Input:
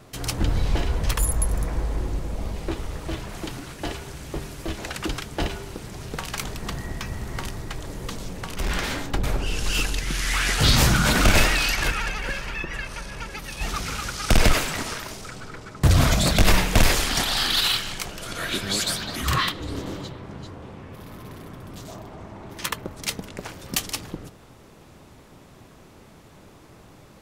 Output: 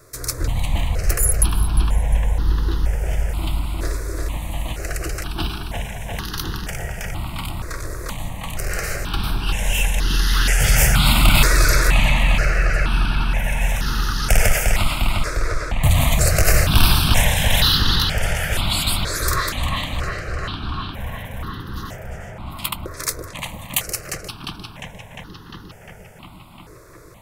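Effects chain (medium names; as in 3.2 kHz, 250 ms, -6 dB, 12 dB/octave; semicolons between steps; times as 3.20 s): treble shelf 4 kHz +8.5 dB; filtered feedback delay 352 ms, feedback 84%, low-pass 4.6 kHz, level -3 dB; stepped phaser 2.1 Hz 810–2300 Hz; trim +1.5 dB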